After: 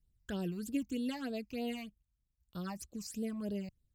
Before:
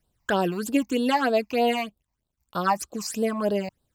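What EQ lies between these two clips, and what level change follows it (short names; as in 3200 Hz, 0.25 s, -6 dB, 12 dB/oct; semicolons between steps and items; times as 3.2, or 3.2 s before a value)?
passive tone stack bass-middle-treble 10-0-1; +7.5 dB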